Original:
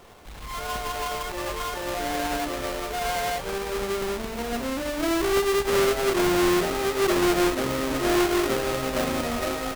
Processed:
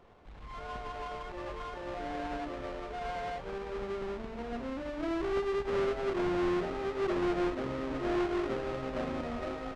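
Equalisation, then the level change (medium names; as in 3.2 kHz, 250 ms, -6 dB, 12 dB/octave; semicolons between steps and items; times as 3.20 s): tape spacing loss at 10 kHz 26 dB; -7.5 dB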